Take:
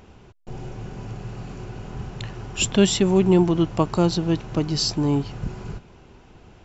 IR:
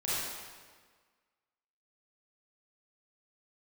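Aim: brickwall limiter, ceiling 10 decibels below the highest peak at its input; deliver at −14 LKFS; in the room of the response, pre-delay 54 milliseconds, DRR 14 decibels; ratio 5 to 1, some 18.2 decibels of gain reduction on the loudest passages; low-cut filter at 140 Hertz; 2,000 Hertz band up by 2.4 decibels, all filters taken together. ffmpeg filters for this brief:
-filter_complex "[0:a]highpass=140,equalizer=frequency=2000:width_type=o:gain=3.5,acompressor=threshold=-34dB:ratio=5,alimiter=level_in=5.5dB:limit=-24dB:level=0:latency=1,volume=-5.5dB,asplit=2[link_01][link_02];[1:a]atrim=start_sample=2205,adelay=54[link_03];[link_02][link_03]afir=irnorm=-1:irlink=0,volume=-21.5dB[link_04];[link_01][link_04]amix=inputs=2:normalize=0,volume=26dB"

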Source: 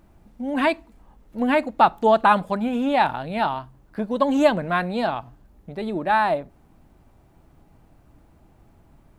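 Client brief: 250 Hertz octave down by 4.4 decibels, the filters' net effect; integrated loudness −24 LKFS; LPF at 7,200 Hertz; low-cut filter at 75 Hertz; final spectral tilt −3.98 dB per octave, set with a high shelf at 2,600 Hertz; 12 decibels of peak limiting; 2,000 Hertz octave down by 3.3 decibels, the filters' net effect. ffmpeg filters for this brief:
ffmpeg -i in.wav -af "highpass=75,lowpass=7200,equalizer=frequency=250:width_type=o:gain=-5,equalizer=frequency=2000:width_type=o:gain=-6,highshelf=frequency=2600:gain=3.5,volume=4dB,alimiter=limit=-13dB:level=0:latency=1" out.wav

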